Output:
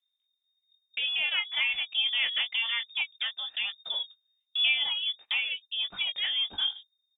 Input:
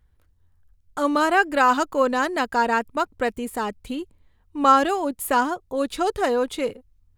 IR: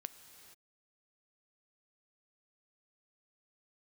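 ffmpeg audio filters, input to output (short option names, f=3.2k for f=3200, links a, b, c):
-filter_complex "[0:a]asplit=2[a][b];[b]adelay=18,volume=-7.5dB[c];[a][c]amix=inputs=2:normalize=0,acompressor=threshold=-34dB:ratio=2,aphaser=in_gain=1:out_gain=1:delay=1.1:decay=0.34:speed=0.44:type=triangular,lowpass=f=3.1k:t=q:w=0.5098,lowpass=f=3.1k:t=q:w=0.6013,lowpass=f=3.1k:t=q:w=0.9,lowpass=f=3.1k:t=q:w=2.563,afreqshift=-3700,agate=range=-25dB:threshold=-44dB:ratio=16:detection=peak"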